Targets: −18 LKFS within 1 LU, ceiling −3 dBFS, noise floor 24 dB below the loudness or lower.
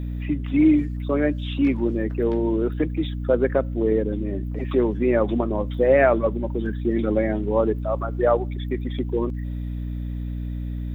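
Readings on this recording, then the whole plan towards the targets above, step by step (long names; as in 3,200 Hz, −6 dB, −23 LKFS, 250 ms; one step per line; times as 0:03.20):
mains hum 60 Hz; hum harmonics up to 300 Hz; level of the hum −26 dBFS; integrated loudness −23.0 LKFS; sample peak −5.5 dBFS; target loudness −18.0 LKFS
→ hum removal 60 Hz, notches 5
level +5 dB
brickwall limiter −3 dBFS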